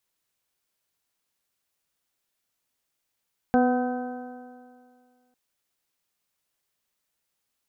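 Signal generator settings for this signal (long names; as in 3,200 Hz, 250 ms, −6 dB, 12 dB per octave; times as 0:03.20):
stiff-string partials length 1.80 s, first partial 248 Hz, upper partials −4/−3/−20/−19/−13 dB, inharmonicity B 0.0018, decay 2.08 s, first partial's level −18 dB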